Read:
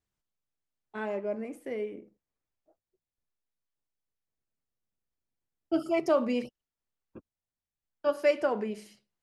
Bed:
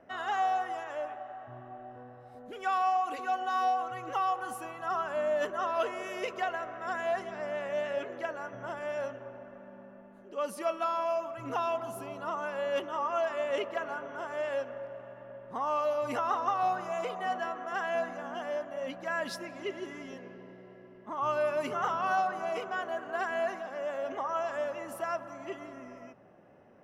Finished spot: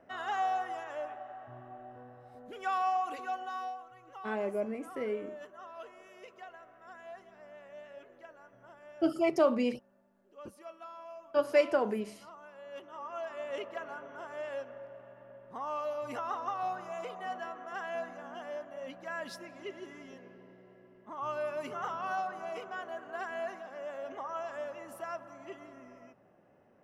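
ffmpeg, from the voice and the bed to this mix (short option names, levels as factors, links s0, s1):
-filter_complex "[0:a]adelay=3300,volume=0.944[s0];[1:a]volume=2.51,afade=t=out:st=3.06:d=0.78:silence=0.199526,afade=t=in:st=12.63:d=1.03:silence=0.298538[s1];[s0][s1]amix=inputs=2:normalize=0"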